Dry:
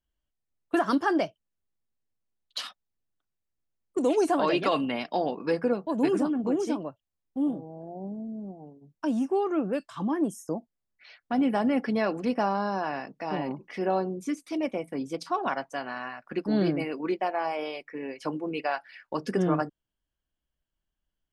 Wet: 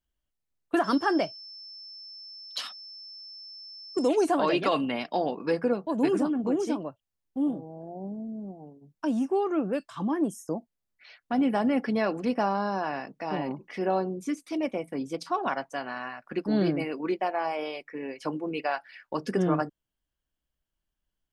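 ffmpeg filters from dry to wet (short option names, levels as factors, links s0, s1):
-filter_complex "[0:a]asettb=1/sr,asplit=3[s0][s1][s2];[s0]atrim=end=0.844[s3];[s1]atrim=start=0.84:end=4.08,asetpts=PTS-STARTPTS,afade=t=in:d=0.004:c=qsin,afade=t=out:st=3.236:d=0.004:c=qsin,aeval=exprs='val(0)+0.00794*sin(2*PI*5300*n/s)':c=same[s4];[s2]atrim=start=4.076[s5];[s3][s4]acrossfade=d=0.004:c1=hsin:c2=qsin[s6];[s6][s5]acrossfade=d=0.004:c1=qsin:c2=hsin"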